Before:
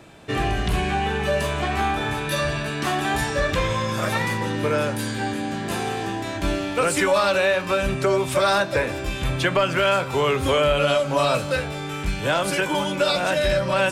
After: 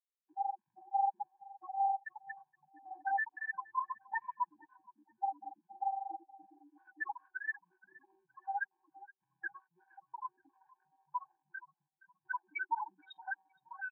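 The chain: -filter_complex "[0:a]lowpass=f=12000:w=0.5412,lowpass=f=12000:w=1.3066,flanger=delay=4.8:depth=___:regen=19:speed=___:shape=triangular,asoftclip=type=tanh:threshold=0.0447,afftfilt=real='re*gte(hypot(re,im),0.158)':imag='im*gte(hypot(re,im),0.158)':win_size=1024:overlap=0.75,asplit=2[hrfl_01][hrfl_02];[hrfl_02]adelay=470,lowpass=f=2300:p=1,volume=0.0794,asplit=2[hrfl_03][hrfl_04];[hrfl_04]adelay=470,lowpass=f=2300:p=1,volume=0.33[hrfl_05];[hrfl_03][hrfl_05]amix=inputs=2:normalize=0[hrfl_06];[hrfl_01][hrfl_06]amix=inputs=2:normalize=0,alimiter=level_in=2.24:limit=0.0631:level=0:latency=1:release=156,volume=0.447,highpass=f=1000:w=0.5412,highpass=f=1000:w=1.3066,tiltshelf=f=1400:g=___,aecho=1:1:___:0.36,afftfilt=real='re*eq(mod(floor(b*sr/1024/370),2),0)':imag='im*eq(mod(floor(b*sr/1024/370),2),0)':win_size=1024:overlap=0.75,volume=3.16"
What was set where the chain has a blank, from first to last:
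8.8, 1.7, 8.5, 6.2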